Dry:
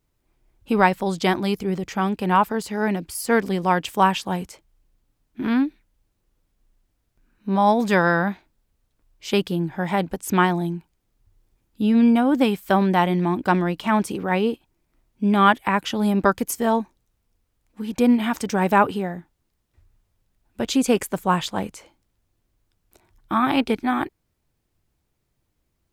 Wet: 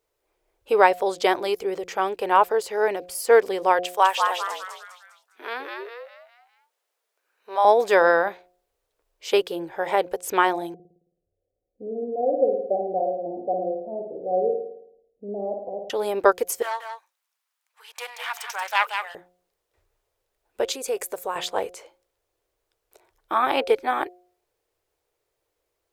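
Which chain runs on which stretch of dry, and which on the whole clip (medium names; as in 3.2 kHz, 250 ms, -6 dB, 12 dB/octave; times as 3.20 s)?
3.79–7.65 s: high-pass 670 Hz + frequency-shifting echo 202 ms, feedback 42%, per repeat +120 Hz, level -4 dB
10.74–15.90 s: rippled Chebyshev low-pass 760 Hz, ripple 9 dB + flutter echo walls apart 9.3 m, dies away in 0.75 s
16.62–19.15 s: self-modulated delay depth 0.17 ms + high-pass 1 kHz 24 dB/octave + delay 181 ms -7 dB
20.72–21.36 s: treble shelf 7.2 kHz +9.5 dB + band-stop 3.1 kHz, Q 11 + compression 2.5:1, threshold -29 dBFS
whole clip: resonant low shelf 310 Hz -13.5 dB, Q 3; de-hum 179.2 Hz, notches 4; trim -1 dB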